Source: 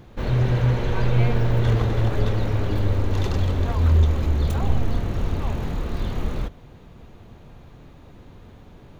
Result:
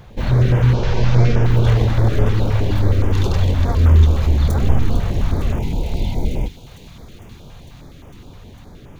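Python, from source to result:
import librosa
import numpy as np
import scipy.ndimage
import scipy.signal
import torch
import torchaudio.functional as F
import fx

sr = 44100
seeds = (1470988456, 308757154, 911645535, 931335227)

y = fx.cvsd(x, sr, bps=32000, at=(0.74, 1.44))
y = fx.spec_box(y, sr, start_s=5.59, length_s=1.08, low_hz=1000.0, high_hz=2000.0, gain_db=-30)
y = fx.echo_wet_highpass(y, sr, ms=453, feedback_pct=81, hz=2800.0, wet_db=-11.5)
y = fx.filter_held_notch(y, sr, hz=9.6, low_hz=290.0, high_hz=4100.0)
y = F.gain(torch.from_numpy(y), 6.0).numpy()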